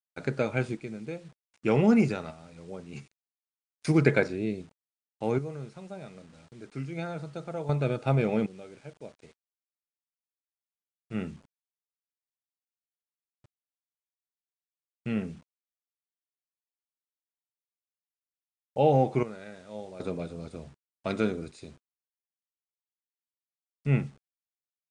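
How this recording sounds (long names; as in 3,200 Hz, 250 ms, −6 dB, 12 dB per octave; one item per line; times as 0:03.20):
sample-and-hold tremolo 1.3 Hz, depth 95%
a quantiser's noise floor 10 bits, dither none
MP3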